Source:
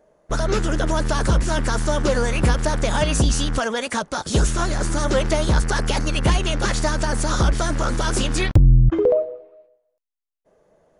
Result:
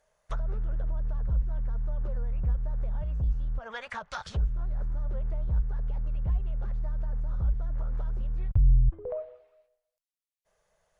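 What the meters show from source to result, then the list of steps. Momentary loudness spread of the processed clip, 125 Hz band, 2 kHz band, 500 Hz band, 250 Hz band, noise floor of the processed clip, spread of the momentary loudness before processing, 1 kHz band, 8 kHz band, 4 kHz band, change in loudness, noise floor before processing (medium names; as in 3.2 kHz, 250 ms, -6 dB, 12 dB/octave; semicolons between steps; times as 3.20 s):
8 LU, -10.0 dB, -20.5 dB, -20.5 dB, -22.0 dB, -85 dBFS, 6 LU, -20.0 dB, -34.5 dB, -26.0 dB, -11.0 dB, -71 dBFS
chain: amplifier tone stack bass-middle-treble 10-0-10; low-pass that closes with the level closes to 360 Hz, closed at -24 dBFS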